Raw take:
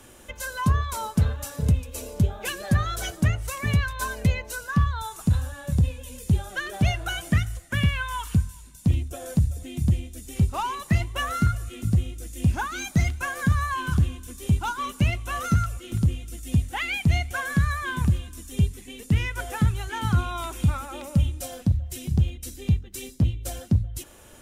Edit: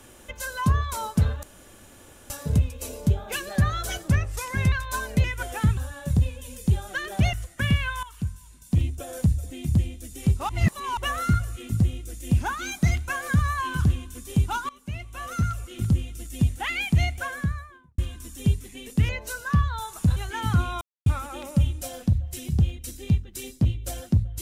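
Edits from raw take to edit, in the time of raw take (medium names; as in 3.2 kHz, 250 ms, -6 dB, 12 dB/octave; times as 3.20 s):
1.43 s: insert room tone 0.87 s
3.21–3.80 s: speed 92%
4.32–5.39 s: swap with 19.22–19.75 s
6.95–7.46 s: delete
8.16–8.97 s: fade in, from -14 dB
10.62–11.10 s: reverse
14.82–15.95 s: fade in, from -22.5 dB
17.17–18.11 s: studio fade out
20.40–20.65 s: mute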